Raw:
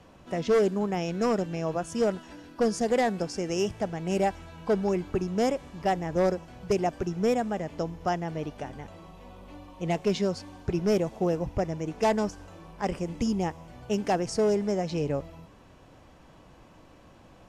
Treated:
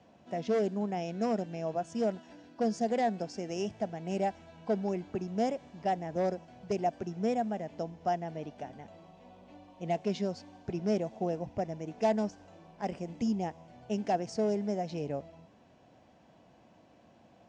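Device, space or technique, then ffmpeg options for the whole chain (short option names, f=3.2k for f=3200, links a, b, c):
car door speaker: -af "highpass=100,equalizer=f=220:t=q:w=4:g=6,equalizer=f=690:t=q:w=4:g=8,equalizer=f=1.2k:t=q:w=4:g=-6,lowpass=f=7.3k:w=0.5412,lowpass=f=7.3k:w=1.3066,volume=-8dB"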